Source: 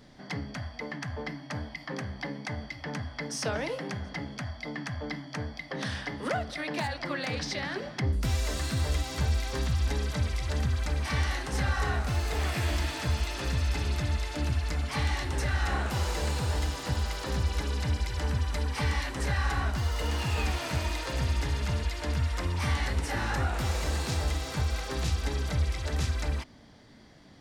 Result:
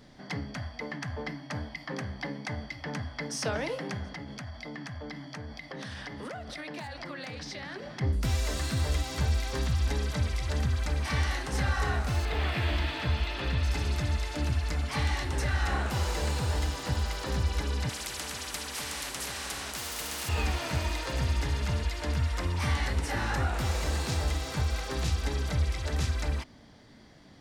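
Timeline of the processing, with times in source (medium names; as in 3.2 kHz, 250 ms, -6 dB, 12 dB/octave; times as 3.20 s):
4.10–8.01 s: compression, threshold -36 dBFS
12.25–13.63 s: resonant high shelf 4.8 kHz -10 dB, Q 1.5
17.89–20.29 s: spectrum-flattening compressor 4:1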